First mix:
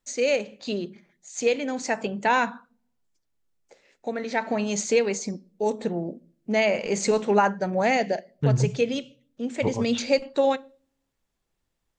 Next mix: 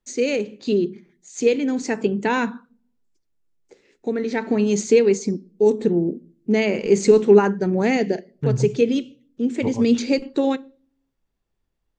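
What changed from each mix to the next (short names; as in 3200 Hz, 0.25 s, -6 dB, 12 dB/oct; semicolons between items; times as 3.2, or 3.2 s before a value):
first voice: add resonant low shelf 490 Hz +6.5 dB, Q 3; second voice: add air absorption 400 m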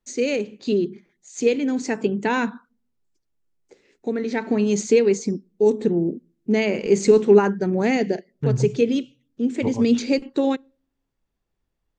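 first voice: send -11.5 dB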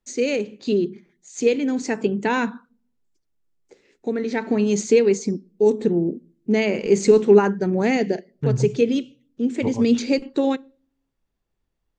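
first voice: send +7.0 dB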